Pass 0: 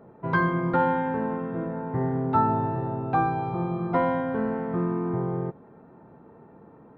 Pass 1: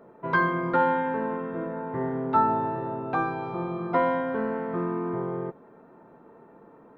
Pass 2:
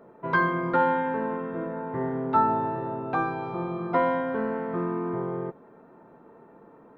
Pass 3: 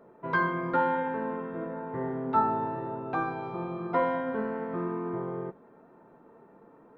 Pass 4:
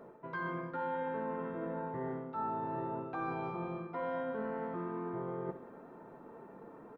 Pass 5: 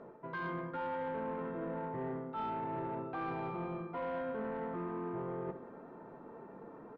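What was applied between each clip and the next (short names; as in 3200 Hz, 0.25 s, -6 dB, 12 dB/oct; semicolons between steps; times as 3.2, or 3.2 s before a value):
bell 90 Hz -14 dB 2.1 oct; notch 800 Hz, Q 12; gain +2 dB
nothing audible
flange 1 Hz, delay 1.8 ms, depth 3.6 ms, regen +89%; gain +1 dB
reverse; compressor 12:1, threshold -38 dBFS, peak gain reduction 19 dB; reverse; feedback echo 67 ms, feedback 58%, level -12 dB; gain +3 dB
soft clip -33 dBFS, distortion -17 dB; air absorption 130 m; gain +1.5 dB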